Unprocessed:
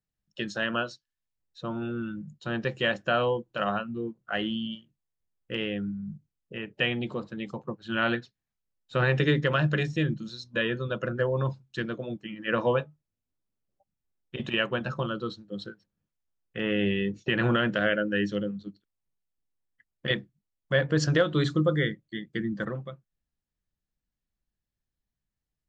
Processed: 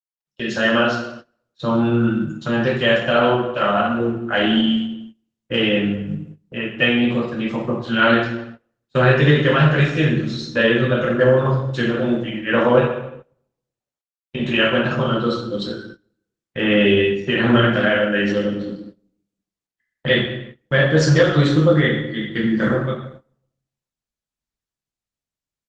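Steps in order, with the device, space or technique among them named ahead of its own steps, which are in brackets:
high-pass filter 61 Hz 6 dB per octave
0:12.50–0:14.47: noise gate with hold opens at −48 dBFS
speakerphone in a meeting room (convolution reverb RT60 0.90 s, pre-delay 3 ms, DRR −4.5 dB; automatic gain control gain up to 10.5 dB; noise gate −35 dBFS, range −20 dB; level −1 dB; Opus 16 kbit/s 48,000 Hz)

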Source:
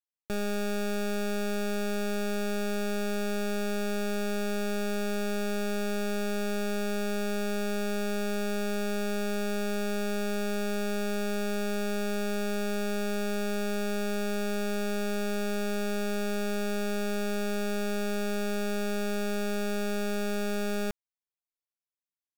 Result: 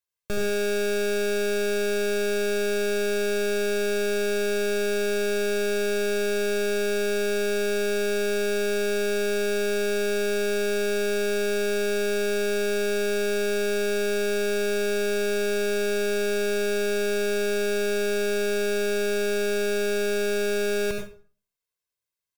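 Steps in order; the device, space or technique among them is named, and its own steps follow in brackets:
microphone above a desk (comb filter 1.9 ms, depth 59%; convolution reverb RT60 0.40 s, pre-delay 72 ms, DRR 2.5 dB)
parametric band 630 Hz −3 dB 0.65 octaves
level +3.5 dB

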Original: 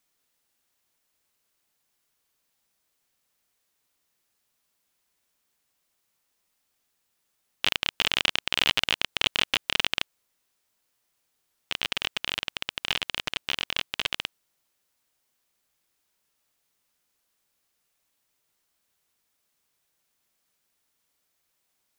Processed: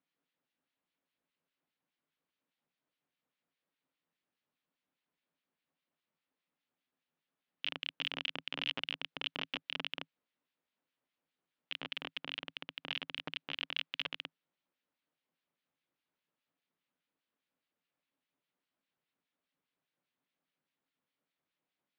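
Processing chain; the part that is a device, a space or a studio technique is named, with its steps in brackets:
guitar amplifier with harmonic tremolo (two-band tremolo in antiphase 4.9 Hz, crossover 1,600 Hz; soft clipping −14 dBFS, distortion −12 dB; loudspeaker in its box 100–3,700 Hz, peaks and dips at 110 Hz −7 dB, 160 Hz +8 dB, 270 Hz +9 dB, 530 Hz +3 dB)
0:13.59–0:14.10: tilt shelving filter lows −3.5 dB, about 770 Hz
level −6 dB

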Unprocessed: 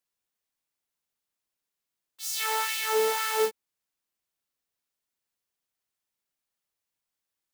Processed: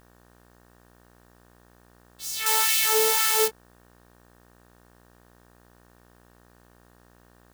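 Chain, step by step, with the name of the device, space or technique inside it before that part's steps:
video cassette with head-switching buzz (hum with harmonics 60 Hz, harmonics 31, −57 dBFS −3 dB per octave; white noise bed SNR 32 dB)
0:02.46–0:03.48: high-shelf EQ 2,900 Hz +12 dB

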